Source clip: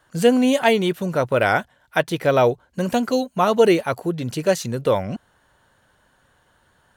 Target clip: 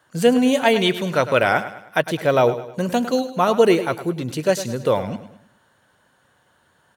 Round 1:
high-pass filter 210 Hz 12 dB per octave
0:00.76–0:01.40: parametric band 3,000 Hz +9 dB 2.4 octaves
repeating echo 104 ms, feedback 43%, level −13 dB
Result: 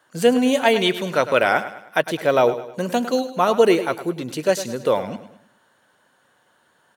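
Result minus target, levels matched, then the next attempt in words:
125 Hz band −5.0 dB
high-pass filter 100 Hz 12 dB per octave
0:00.76–0:01.40: parametric band 3,000 Hz +9 dB 2.4 octaves
repeating echo 104 ms, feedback 43%, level −13 dB

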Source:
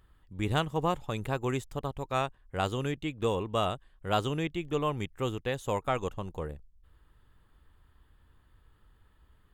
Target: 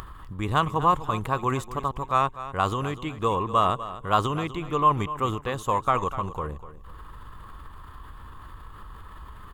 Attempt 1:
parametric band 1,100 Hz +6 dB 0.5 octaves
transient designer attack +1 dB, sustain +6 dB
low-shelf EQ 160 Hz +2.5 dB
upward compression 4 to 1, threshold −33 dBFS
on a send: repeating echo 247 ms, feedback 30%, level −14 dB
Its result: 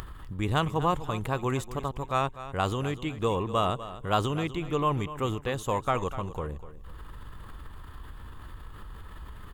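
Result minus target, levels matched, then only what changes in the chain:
1,000 Hz band −3.0 dB
change: parametric band 1,100 Hz +15.5 dB 0.5 octaves

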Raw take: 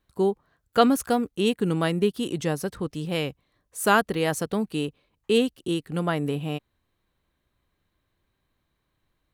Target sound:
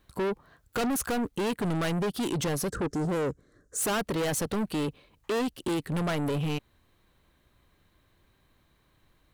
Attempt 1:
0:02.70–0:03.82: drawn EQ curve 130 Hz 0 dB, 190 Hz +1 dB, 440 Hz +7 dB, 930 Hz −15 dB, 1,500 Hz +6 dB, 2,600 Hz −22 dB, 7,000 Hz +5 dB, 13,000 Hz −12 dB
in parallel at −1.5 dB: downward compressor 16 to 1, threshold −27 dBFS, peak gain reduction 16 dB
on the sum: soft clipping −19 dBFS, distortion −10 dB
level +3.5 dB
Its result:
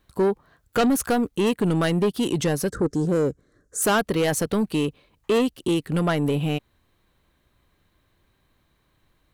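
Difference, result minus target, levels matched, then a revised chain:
soft clipping: distortion −6 dB
0:02.70–0:03.82: drawn EQ curve 130 Hz 0 dB, 190 Hz +1 dB, 440 Hz +7 dB, 930 Hz −15 dB, 1,500 Hz +6 dB, 2,600 Hz −22 dB, 7,000 Hz +5 dB, 13,000 Hz −12 dB
in parallel at −1.5 dB: downward compressor 16 to 1, threshold −27 dBFS, peak gain reduction 16 dB
on the sum: soft clipping −29.5 dBFS, distortion −4 dB
level +3.5 dB

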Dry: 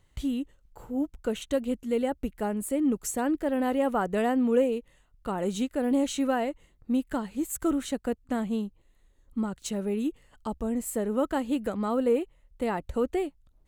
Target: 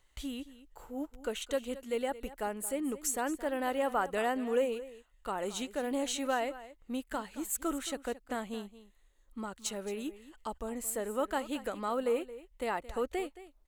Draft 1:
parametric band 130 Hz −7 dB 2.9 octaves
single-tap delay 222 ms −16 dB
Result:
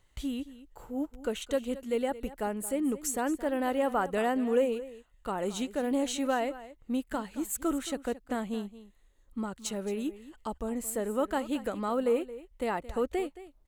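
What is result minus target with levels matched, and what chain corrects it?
125 Hz band +3.5 dB
parametric band 130 Hz −16 dB 2.9 octaves
single-tap delay 222 ms −16 dB

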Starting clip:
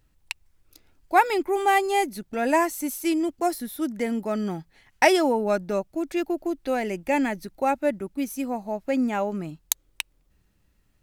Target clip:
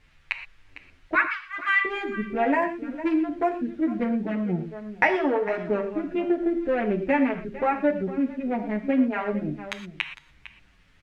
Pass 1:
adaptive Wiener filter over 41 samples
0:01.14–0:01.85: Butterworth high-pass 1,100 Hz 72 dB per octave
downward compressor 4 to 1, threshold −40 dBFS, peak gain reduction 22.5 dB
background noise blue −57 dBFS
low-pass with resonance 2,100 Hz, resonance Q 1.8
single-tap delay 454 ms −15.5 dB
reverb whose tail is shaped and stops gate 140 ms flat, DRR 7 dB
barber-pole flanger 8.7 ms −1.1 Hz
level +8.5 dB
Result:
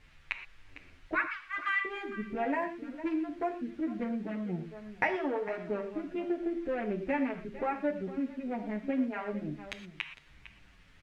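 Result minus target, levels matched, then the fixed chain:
downward compressor: peak gain reduction +9 dB
adaptive Wiener filter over 41 samples
0:01.14–0:01.85: Butterworth high-pass 1,100 Hz 72 dB per octave
downward compressor 4 to 1, threshold −28 dBFS, peak gain reduction 13.5 dB
background noise blue −57 dBFS
low-pass with resonance 2,100 Hz, resonance Q 1.8
single-tap delay 454 ms −15.5 dB
reverb whose tail is shaped and stops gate 140 ms flat, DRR 7 dB
barber-pole flanger 8.7 ms −1.1 Hz
level +8.5 dB

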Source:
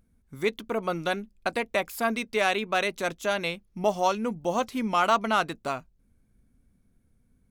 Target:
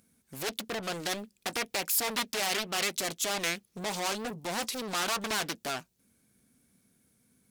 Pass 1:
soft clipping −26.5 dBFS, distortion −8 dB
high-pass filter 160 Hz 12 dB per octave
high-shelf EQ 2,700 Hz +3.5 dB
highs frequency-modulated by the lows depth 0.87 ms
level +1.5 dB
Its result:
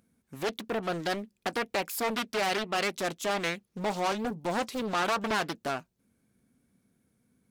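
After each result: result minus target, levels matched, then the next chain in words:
4,000 Hz band −4.0 dB; soft clipping: distortion −4 dB
soft clipping −26.5 dBFS, distortion −8 dB
high-pass filter 160 Hz 12 dB per octave
high-shelf EQ 2,700 Hz +15 dB
highs frequency-modulated by the lows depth 0.87 ms
level +1.5 dB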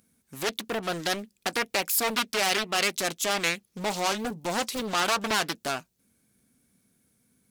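soft clipping: distortion −4 dB
soft clipping −34 dBFS, distortion −4 dB
high-pass filter 160 Hz 12 dB per octave
high-shelf EQ 2,700 Hz +15 dB
highs frequency-modulated by the lows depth 0.87 ms
level +1.5 dB

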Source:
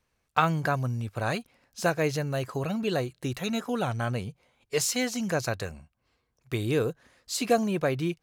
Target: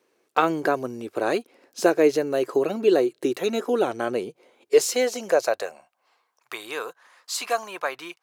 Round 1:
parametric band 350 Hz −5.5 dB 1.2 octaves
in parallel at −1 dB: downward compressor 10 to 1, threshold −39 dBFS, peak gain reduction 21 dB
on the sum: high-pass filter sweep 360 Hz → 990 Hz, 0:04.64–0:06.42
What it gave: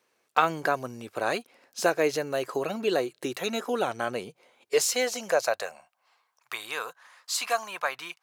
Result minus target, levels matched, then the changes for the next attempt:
250 Hz band −3.5 dB
change: parametric band 350 Hz +5.5 dB 1.2 octaves

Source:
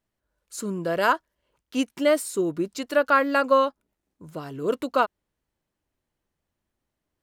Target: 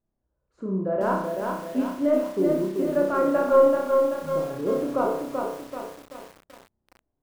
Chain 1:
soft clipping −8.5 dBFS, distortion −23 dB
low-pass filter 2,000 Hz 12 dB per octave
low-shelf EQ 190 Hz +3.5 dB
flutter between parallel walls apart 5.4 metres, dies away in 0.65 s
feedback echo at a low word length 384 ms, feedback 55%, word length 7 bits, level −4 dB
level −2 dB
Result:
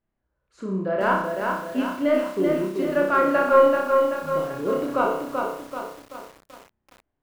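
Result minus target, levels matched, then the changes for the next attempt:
2,000 Hz band +8.0 dB
change: low-pass filter 840 Hz 12 dB per octave

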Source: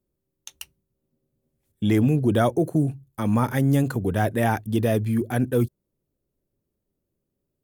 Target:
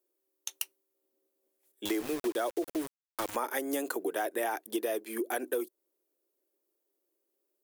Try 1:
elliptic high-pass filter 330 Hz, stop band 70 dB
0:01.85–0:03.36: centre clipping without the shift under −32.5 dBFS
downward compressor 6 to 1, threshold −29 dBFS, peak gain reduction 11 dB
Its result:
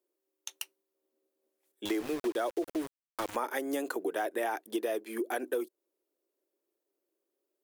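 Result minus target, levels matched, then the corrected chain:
8,000 Hz band −4.5 dB
elliptic high-pass filter 330 Hz, stop band 70 dB
0:01.85–0:03.36: centre clipping without the shift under −32.5 dBFS
downward compressor 6 to 1, threshold −29 dBFS, peak gain reduction 11 dB
high-shelf EQ 7,200 Hz +8.5 dB

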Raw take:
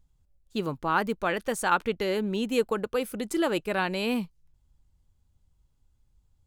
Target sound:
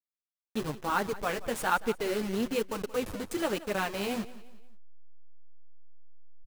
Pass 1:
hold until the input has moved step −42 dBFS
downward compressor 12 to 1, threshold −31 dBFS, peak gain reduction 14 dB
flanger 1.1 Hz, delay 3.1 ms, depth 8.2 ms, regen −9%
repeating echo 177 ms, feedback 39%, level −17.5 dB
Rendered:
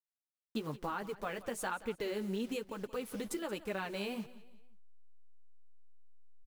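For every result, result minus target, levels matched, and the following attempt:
downward compressor: peak gain reduction +14 dB; hold until the input has moved: distortion −12 dB
hold until the input has moved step −42 dBFS
flanger 1.1 Hz, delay 3.1 ms, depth 8.2 ms, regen −9%
repeating echo 177 ms, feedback 39%, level −17.5 dB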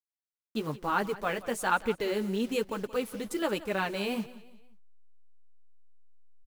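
hold until the input has moved: distortion −12 dB
hold until the input has moved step −30 dBFS
flanger 1.1 Hz, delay 3.1 ms, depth 8.2 ms, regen −9%
repeating echo 177 ms, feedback 39%, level −17.5 dB

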